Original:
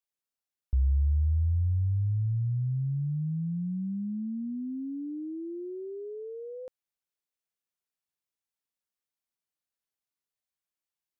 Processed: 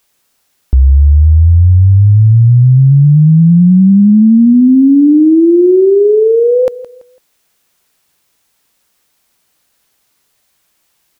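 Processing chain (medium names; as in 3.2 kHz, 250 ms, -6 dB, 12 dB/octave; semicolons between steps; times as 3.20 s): on a send: feedback delay 167 ms, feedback 32%, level -17 dB; on the sum: compression, threshold -27 dBFS, peak gain reduction 5.5 dB; loudness maximiser +32.5 dB; trim -1 dB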